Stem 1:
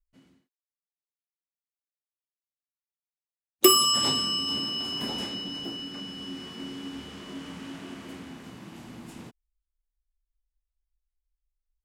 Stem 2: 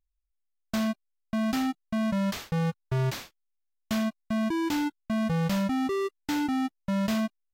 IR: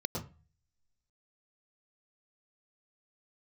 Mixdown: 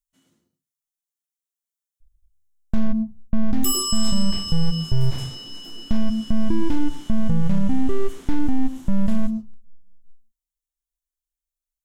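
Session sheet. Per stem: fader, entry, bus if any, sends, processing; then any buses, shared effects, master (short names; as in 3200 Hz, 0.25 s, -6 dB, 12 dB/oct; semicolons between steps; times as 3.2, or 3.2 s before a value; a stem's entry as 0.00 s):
-6.0 dB, 0.00 s, send -9.5 dB, tone controls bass -11 dB, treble +13 dB
+2.0 dB, 2.00 s, send -20.5 dB, half-wave gain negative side -12 dB; tilt -4 dB/oct; notch 1300 Hz, Q 15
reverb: on, RT60 0.35 s, pre-delay 0.101 s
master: vocal rider within 4 dB 0.5 s; limiter -8.5 dBFS, peak gain reduction 7.5 dB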